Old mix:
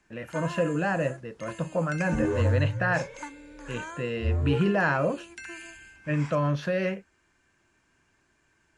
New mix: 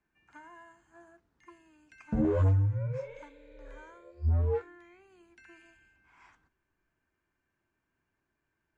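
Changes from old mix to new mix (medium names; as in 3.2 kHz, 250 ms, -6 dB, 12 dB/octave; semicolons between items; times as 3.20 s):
speech: muted; first sound -12.0 dB; master: add low-pass 1.8 kHz 6 dB/octave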